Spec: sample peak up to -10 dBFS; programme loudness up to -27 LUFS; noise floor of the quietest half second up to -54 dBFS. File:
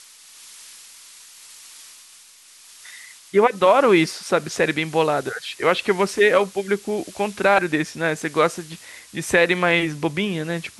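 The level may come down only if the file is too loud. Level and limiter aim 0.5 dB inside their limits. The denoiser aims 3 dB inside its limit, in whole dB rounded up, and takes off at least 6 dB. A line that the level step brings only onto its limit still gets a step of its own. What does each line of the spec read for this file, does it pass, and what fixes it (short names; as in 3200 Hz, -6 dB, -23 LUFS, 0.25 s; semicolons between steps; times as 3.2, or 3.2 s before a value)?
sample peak -4.0 dBFS: fail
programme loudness -20.0 LUFS: fail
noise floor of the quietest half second -48 dBFS: fail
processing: gain -7.5 dB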